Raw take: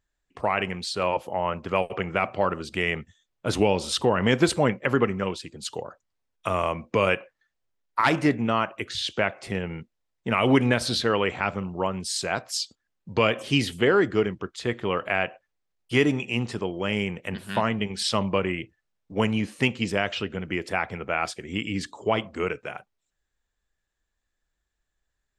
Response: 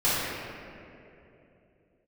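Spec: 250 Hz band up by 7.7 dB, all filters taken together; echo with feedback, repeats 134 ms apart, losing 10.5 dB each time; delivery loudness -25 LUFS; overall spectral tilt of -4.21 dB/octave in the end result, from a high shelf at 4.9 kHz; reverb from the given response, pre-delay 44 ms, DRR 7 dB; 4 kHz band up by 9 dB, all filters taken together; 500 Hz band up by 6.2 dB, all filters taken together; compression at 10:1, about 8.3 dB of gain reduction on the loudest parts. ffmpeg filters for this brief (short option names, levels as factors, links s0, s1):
-filter_complex "[0:a]equalizer=f=250:t=o:g=8,equalizer=f=500:t=o:g=5,equalizer=f=4000:t=o:g=8.5,highshelf=f=4900:g=6.5,acompressor=threshold=0.158:ratio=10,aecho=1:1:134|268|402:0.299|0.0896|0.0269,asplit=2[s0][s1];[1:a]atrim=start_sample=2205,adelay=44[s2];[s1][s2]afir=irnorm=-1:irlink=0,volume=0.075[s3];[s0][s3]amix=inputs=2:normalize=0,volume=0.75"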